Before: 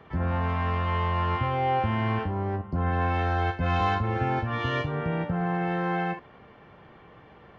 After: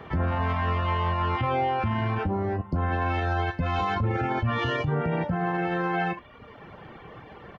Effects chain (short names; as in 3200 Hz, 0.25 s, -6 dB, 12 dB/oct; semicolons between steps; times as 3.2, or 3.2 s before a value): doubler 26 ms -12.5 dB; reverb removal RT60 0.81 s; limiter -27 dBFS, peak gain reduction 10.5 dB; gain +8.5 dB